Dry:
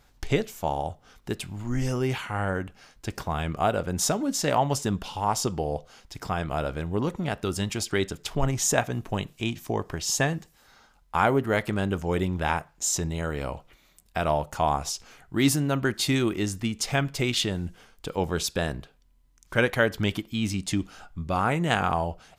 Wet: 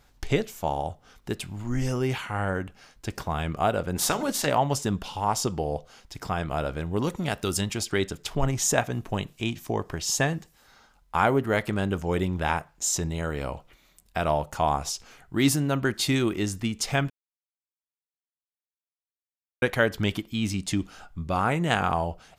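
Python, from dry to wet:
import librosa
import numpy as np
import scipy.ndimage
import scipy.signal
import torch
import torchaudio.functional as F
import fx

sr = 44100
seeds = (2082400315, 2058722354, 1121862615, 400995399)

y = fx.spec_clip(x, sr, under_db=16, at=(3.95, 4.45), fade=0.02)
y = fx.high_shelf(y, sr, hz=3500.0, db=9.0, at=(6.96, 7.61))
y = fx.edit(y, sr, fx.silence(start_s=17.1, length_s=2.52), tone=tone)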